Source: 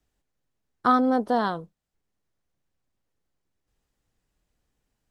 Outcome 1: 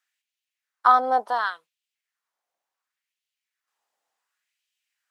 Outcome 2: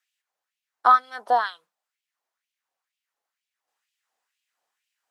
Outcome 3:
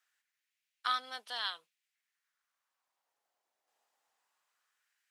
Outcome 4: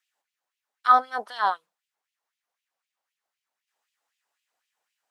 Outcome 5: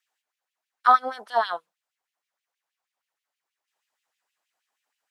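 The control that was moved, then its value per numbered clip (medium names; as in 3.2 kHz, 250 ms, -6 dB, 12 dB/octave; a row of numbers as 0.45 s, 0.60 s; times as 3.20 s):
LFO high-pass, rate: 0.69 Hz, 2.1 Hz, 0.21 Hz, 3.9 Hz, 6.3 Hz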